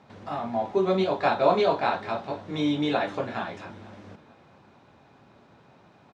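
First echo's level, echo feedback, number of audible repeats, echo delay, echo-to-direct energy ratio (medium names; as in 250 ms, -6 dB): -22.0 dB, 38%, 2, 454 ms, -21.5 dB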